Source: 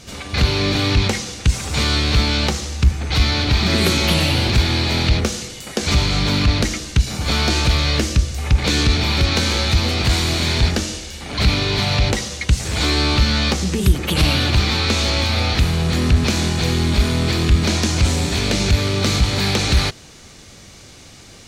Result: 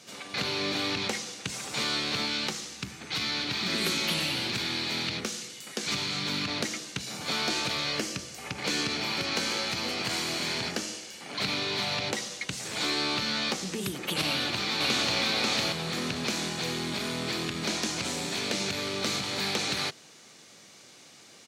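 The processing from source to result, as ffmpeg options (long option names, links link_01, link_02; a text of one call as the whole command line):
ffmpeg -i in.wav -filter_complex "[0:a]asettb=1/sr,asplit=3[link_01][link_02][link_03];[link_01]atrim=end=2.264[link_04];[link_02]atrim=start=2.26:end=6.48,asetpts=PTS-STARTPTS,afade=type=in:duration=0.004:curve=qsin,afade=type=out:start_time=4.216:duration=0.004:curve=qsin,equalizer=frequency=650:width_type=o:width=1.3:gain=-5.5[link_05];[link_03]atrim=start=6.476[link_06];[link_04][link_05]acrossfade=duration=0.004:curve1=hsin:curve2=qsin[link_07];[link_07][link_06]acrossfade=duration=0.004:curve1=qsin:curve2=hsin,asettb=1/sr,asplit=3[link_08][link_09][link_10];[link_08]atrim=end=7.924[link_11];[link_09]atrim=start=7.92:end=11.35,asetpts=PTS-STARTPTS,afade=type=in:duration=0.004:curve=qsin,afade=type=out:start_time=3.426:duration=0.004:curve=qsin,bandreject=frequency=3700:width=11[link_12];[link_10]atrim=start=11.346[link_13];[link_11][link_12]acrossfade=duration=0.004:curve1=hsin:curve2=qsin[link_14];[link_14][link_13]acrossfade=duration=0.004:curve1=qsin:curve2=hsin,asplit=2[link_15][link_16];[link_16]afade=type=in:start_time=14.26:duration=0.01,afade=type=out:start_time=15.18:duration=0.01,aecho=0:1:540|1080|1620|2160:0.944061|0.283218|0.0849655|0.0254896[link_17];[link_15][link_17]amix=inputs=2:normalize=0,highpass=frequency=130:width=0.5412,highpass=frequency=130:width=1.3066,lowshelf=frequency=210:gain=-10.5,volume=-8.5dB" out.wav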